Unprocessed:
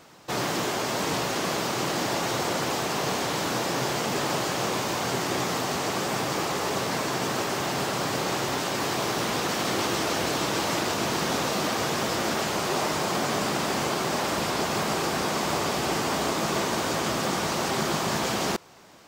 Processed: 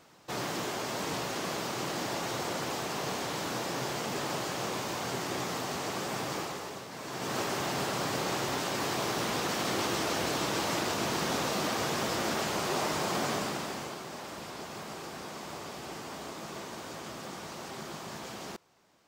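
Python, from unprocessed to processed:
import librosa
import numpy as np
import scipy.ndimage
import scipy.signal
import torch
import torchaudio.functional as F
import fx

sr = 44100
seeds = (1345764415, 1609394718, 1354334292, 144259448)

y = fx.gain(x, sr, db=fx.line((6.36, -7.0), (6.89, -16.5), (7.37, -4.5), (13.29, -4.5), (14.05, -15.0)))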